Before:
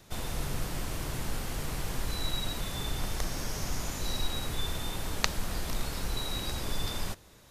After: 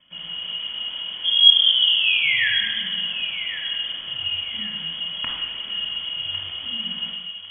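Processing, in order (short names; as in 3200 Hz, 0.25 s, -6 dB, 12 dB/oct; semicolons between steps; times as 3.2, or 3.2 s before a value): painted sound rise, 1.24–2.51, 350–2200 Hz -21 dBFS; frequency shift -450 Hz; on a send: dark delay 1.102 s, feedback 33%, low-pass 2600 Hz, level -12 dB; on the sum: shoebox room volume 2400 m³, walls mixed, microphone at 3.6 m; inverted band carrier 3300 Hz; gain -6 dB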